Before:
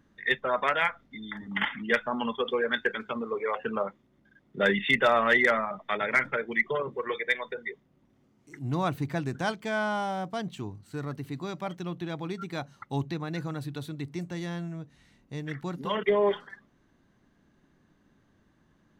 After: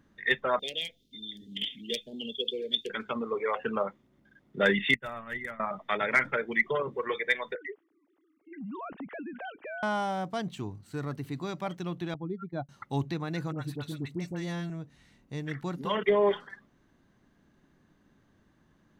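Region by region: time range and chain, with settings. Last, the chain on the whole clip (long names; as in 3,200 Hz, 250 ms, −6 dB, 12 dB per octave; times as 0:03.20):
0:00.59–0:02.90: Chebyshev band-stop filter 430–3,400 Hz, order 3 + tilt shelving filter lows −9 dB, about 670 Hz
0:04.94–0:05.60: downward expander −21 dBFS + drawn EQ curve 100 Hz 0 dB, 450 Hz −18 dB, 2,100 Hz −13 dB, 4,900 Hz −21 dB, 10,000 Hz −4 dB
0:07.55–0:09.83: three sine waves on the formant tracks + downward compressor 5 to 1, threshold −37 dBFS
0:12.14–0:12.69: expanding power law on the bin magnitudes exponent 1.9 + parametric band 2,700 Hz −11.5 dB 0.25 octaves + downward expander −35 dBFS
0:13.52–0:14.70: all-pass dispersion highs, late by 66 ms, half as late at 1,100 Hz + one half of a high-frequency compander decoder only
whole clip: no processing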